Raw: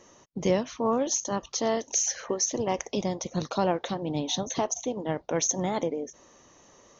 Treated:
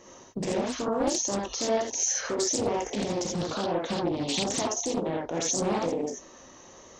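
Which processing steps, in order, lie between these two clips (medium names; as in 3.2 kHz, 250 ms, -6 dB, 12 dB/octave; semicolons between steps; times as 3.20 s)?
peak limiter -24.5 dBFS, peak gain reduction 12 dB; gated-style reverb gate 100 ms rising, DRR -2 dB; loudspeaker Doppler distortion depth 0.6 ms; trim +2 dB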